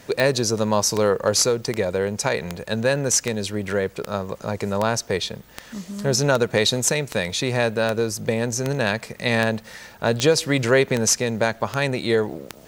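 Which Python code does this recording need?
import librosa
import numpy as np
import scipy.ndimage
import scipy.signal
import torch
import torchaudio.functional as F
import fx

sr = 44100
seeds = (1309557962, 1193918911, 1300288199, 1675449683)

y = fx.fix_declip(x, sr, threshold_db=-6.0)
y = fx.fix_declick_ar(y, sr, threshold=10.0)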